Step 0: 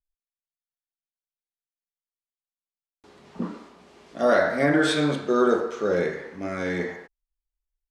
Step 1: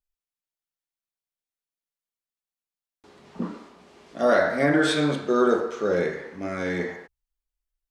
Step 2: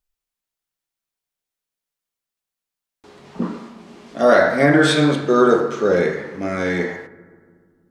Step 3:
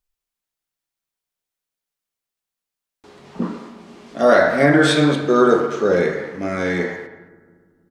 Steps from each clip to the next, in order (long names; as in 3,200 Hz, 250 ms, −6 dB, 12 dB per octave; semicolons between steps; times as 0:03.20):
hum removal 56.13 Hz, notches 2
convolution reverb RT60 2.0 s, pre-delay 3 ms, DRR 14 dB; level +6.5 dB
far-end echo of a speakerphone 220 ms, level −15 dB